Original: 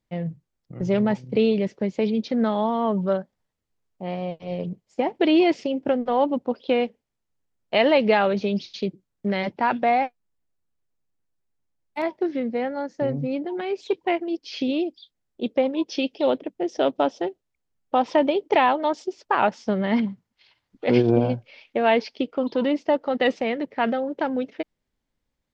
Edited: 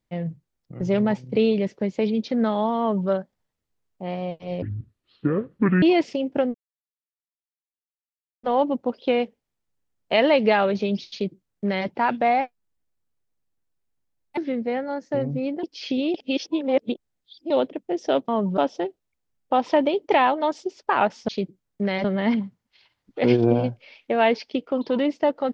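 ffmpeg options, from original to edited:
ffmpeg -i in.wav -filter_complex "[0:a]asplit=12[link_01][link_02][link_03][link_04][link_05][link_06][link_07][link_08][link_09][link_10][link_11][link_12];[link_01]atrim=end=4.624[link_13];[link_02]atrim=start=4.62:end=5.33,asetpts=PTS-STARTPTS,asetrate=26019,aresample=44100,atrim=end_sample=53069,asetpts=PTS-STARTPTS[link_14];[link_03]atrim=start=5.326:end=6.05,asetpts=PTS-STARTPTS,afade=type=out:start_time=0.72:duration=0.004:curve=hsin,apad=pad_dur=1.89[link_15];[link_04]atrim=start=6.05:end=11.992,asetpts=PTS-STARTPTS,afade=type=in:duration=0.004:curve=hsin[link_16];[link_05]atrim=start=12.248:end=13.512[link_17];[link_06]atrim=start=14.338:end=14.852[link_18];[link_07]atrim=start=14.848:end=16.212,asetpts=PTS-STARTPTS,areverse[link_19];[link_08]atrim=start=16.208:end=16.992[link_20];[link_09]atrim=start=2.798:end=3.092[link_21];[link_10]atrim=start=16.988:end=19.702[link_22];[link_11]atrim=start=8.728:end=9.492[link_23];[link_12]atrim=start=19.698[link_24];[link_13][link_14]acrossfade=duration=0.004:curve1=hsin:curve2=hsin[link_25];[link_15][link_16]concat=n=2:v=0:a=1[link_26];[link_25][link_26]acrossfade=duration=0.004:curve1=hsin:curve2=hsin[link_27];[link_27][link_17]acrossfade=duration=0.004:curve1=hsin:curve2=hsin[link_28];[link_28][link_18]acrossfade=duration=0.004:curve1=hsin:curve2=hsin[link_29];[link_29][link_19]acrossfade=duration=0.004:curve1=hsin:curve2=hsin[link_30];[link_30][link_20]acrossfade=duration=0.004:curve1=hsin:curve2=hsin[link_31];[link_31][link_21]acrossfade=duration=0.004:curve1=hsin:curve2=hsin[link_32];[link_32][link_22]acrossfade=duration=0.004:curve1=hsin:curve2=hsin[link_33];[link_33][link_23]acrossfade=duration=0.004:curve1=hsin:curve2=hsin[link_34];[link_34][link_24]acrossfade=duration=0.004:curve1=hsin:curve2=hsin" out.wav

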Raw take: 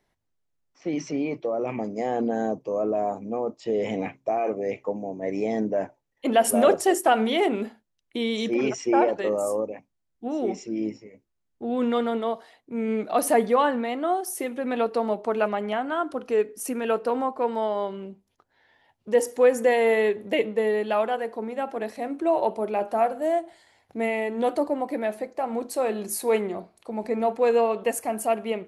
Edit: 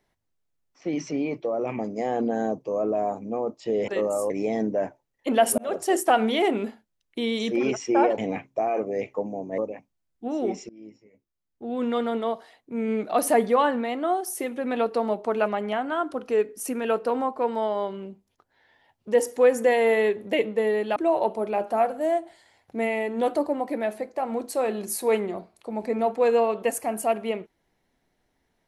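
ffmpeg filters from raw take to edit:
ffmpeg -i in.wav -filter_complex "[0:a]asplit=8[link_01][link_02][link_03][link_04][link_05][link_06][link_07][link_08];[link_01]atrim=end=3.882[link_09];[link_02]atrim=start=9.158:end=9.582[link_10];[link_03]atrim=start=5.278:end=6.56,asetpts=PTS-STARTPTS,afade=type=out:start_time=1.278:duration=0.004:curve=hsin[link_11];[link_04]atrim=start=6.56:end=9.162,asetpts=PTS-STARTPTS,afade=type=in:duration=0.41[link_12];[link_05]atrim=start=3.878:end=5.282[link_13];[link_06]atrim=start=9.578:end=10.69,asetpts=PTS-STARTPTS,afade=type=out:start_time=1.108:duration=0.004:curve=hsin:silence=0.0630957[link_14];[link_07]atrim=start=10.69:end=20.962,asetpts=PTS-STARTPTS,afade=type=in:duration=1.55:silence=0.0630957[link_15];[link_08]atrim=start=22.168[link_16];[link_09][link_10]acrossfade=duration=0.004:curve1=hsin:curve2=hsin[link_17];[link_11][link_12]concat=n=2:v=0:a=1[link_18];[link_17][link_18]acrossfade=duration=0.004:curve1=hsin:curve2=hsin[link_19];[link_19][link_13]acrossfade=duration=0.004:curve1=hsin:curve2=hsin[link_20];[link_14][link_15]concat=n=2:v=0:a=1[link_21];[link_20][link_21]acrossfade=duration=0.004:curve1=hsin:curve2=hsin[link_22];[link_22][link_16]acrossfade=duration=0.004:curve1=hsin:curve2=hsin" out.wav

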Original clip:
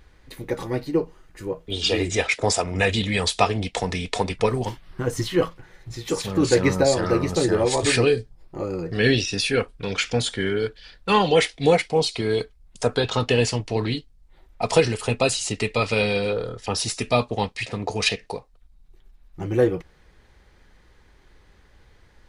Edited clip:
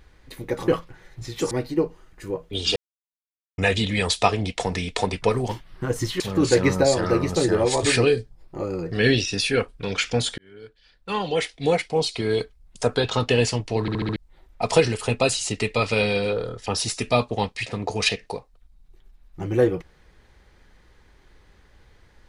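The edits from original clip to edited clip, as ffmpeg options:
ffmpeg -i in.wav -filter_complex "[0:a]asplit=12[link_01][link_02][link_03][link_04][link_05][link_06][link_07][link_08][link_09][link_10][link_11][link_12];[link_01]atrim=end=0.682[link_13];[link_02]atrim=start=5.368:end=6.202[link_14];[link_03]atrim=start=0.678:end=1.93,asetpts=PTS-STARTPTS,afade=type=out:start_time=1.248:duration=0.004:curve=hsin[link_15];[link_04]atrim=start=1.93:end=2.75,asetpts=PTS-STARTPTS,volume=0[link_16];[link_05]atrim=start=2.75:end=5.372,asetpts=PTS-STARTPTS,afade=type=in:duration=0.004:curve=hsin[link_17];[link_06]atrim=start=6.198:end=10.38,asetpts=PTS-STARTPTS,afade=type=out:start_time=4.178:duration=0.004:curve=hsin[link_18];[link_07]atrim=start=10.38:end=13.882,asetpts=PTS-STARTPTS,afade=type=in:duration=1.97[link_19];[link_08]atrim=start=13.808:end=13.882[link_20];[link_09]atrim=start=13.808:end=13.882[link_21];[link_10]atrim=start=13.808:end=13.882[link_22];[link_11]atrim=start=13.808:end=13.882[link_23];[link_12]atrim=start=14.158[link_24];[link_13][link_14]acrossfade=duration=0.004:curve1=hsin:curve2=hsin[link_25];[link_15][link_16][link_17]concat=n=3:v=0:a=1[link_26];[link_25][link_26]acrossfade=duration=0.004:curve1=hsin:curve2=hsin[link_27];[link_18][link_19]concat=n=2:v=0:a=1[link_28];[link_27][link_28]acrossfade=duration=0.004:curve1=hsin:curve2=hsin[link_29];[link_29][link_20]acrossfade=duration=0.004:curve1=hsin:curve2=hsin[link_30];[link_30][link_21]acrossfade=duration=0.004:curve1=hsin:curve2=hsin[link_31];[link_31][link_22]acrossfade=duration=0.004:curve1=hsin:curve2=hsin[link_32];[link_32][link_23]acrossfade=duration=0.004:curve1=hsin:curve2=hsin[link_33];[link_33][link_24]acrossfade=duration=0.004:curve1=hsin:curve2=hsin" out.wav

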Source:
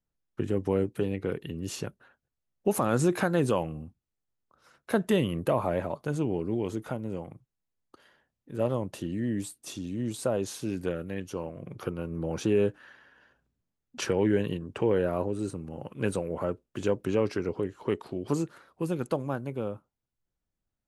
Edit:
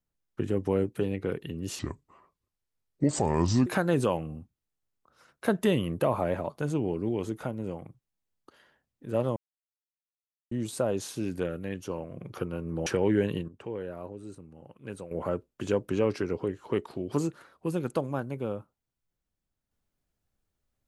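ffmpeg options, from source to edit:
ffmpeg -i in.wav -filter_complex "[0:a]asplit=8[link_01][link_02][link_03][link_04][link_05][link_06][link_07][link_08];[link_01]atrim=end=1.794[link_09];[link_02]atrim=start=1.79:end=3.12,asetpts=PTS-STARTPTS,asetrate=31311,aresample=44100[link_10];[link_03]atrim=start=3.116:end=8.82,asetpts=PTS-STARTPTS,afade=type=out:start_time=5.7:duration=0.004:curve=hsin[link_11];[link_04]atrim=start=8.82:end=9.97,asetpts=PTS-STARTPTS,volume=0[link_12];[link_05]atrim=start=9.97:end=12.322,asetpts=PTS-STARTPTS,afade=type=in:duration=0.004:curve=hsin[link_13];[link_06]atrim=start=14.018:end=14.642[link_14];[link_07]atrim=start=14.638:end=16.272,asetpts=PTS-STARTPTS,volume=-11dB[link_15];[link_08]atrim=start=16.268[link_16];[link_09][link_10]acrossfade=duration=0.004:curve1=hsin:curve2=hsin[link_17];[link_11][link_12][link_13]concat=n=3:v=0:a=1[link_18];[link_17][link_18]acrossfade=duration=0.004:curve1=hsin:curve2=hsin[link_19];[link_19][link_14]acrossfade=duration=0.004:curve1=hsin:curve2=hsin[link_20];[link_20][link_15]acrossfade=duration=0.004:curve1=hsin:curve2=hsin[link_21];[link_21][link_16]acrossfade=duration=0.004:curve1=hsin:curve2=hsin" out.wav

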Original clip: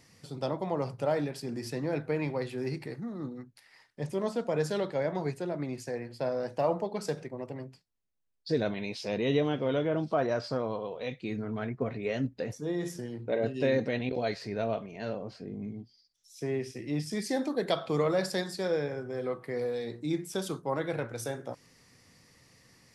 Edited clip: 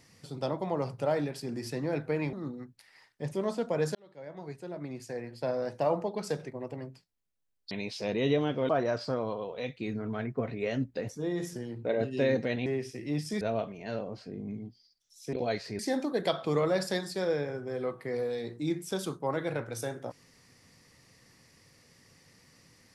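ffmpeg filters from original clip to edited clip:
ffmpeg -i in.wav -filter_complex "[0:a]asplit=9[link_01][link_02][link_03][link_04][link_05][link_06][link_07][link_08][link_09];[link_01]atrim=end=2.332[link_10];[link_02]atrim=start=3.108:end=4.73,asetpts=PTS-STARTPTS,afade=type=out:start_time=1.618:duration=0.004:curve=hsin[link_11];[link_03]atrim=start=4.73:end=8.492,asetpts=PTS-STARTPTS,afade=type=in:duration=1.54[link_12];[link_04]atrim=start=8.748:end=9.732[link_13];[link_05]atrim=start=10.118:end=14.092[link_14];[link_06]atrim=start=16.468:end=17.222[link_15];[link_07]atrim=start=14.548:end=16.472[link_16];[link_08]atrim=start=14.088:end=14.552[link_17];[link_09]atrim=start=17.218[link_18];[link_11][link_12]concat=n=2:v=0:a=1[link_19];[link_10][link_19]acrossfade=duration=0.004:curve1=hsin:curve2=hsin[link_20];[link_20][link_13]acrossfade=duration=0.004:curve1=hsin:curve2=hsin[link_21];[link_21][link_14]acrossfade=duration=0.004:curve1=hsin:curve2=hsin[link_22];[link_22][link_15]acrossfade=duration=0.004:curve1=hsin:curve2=hsin[link_23];[link_23][link_16]acrossfade=duration=0.004:curve1=hsin:curve2=hsin[link_24];[link_24][link_17]acrossfade=duration=0.004:curve1=hsin:curve2=hsin[link_25];[link_25][link_18]acrossfade=duration=0.004:curve1=hsin:curve2=hsin" out.wav

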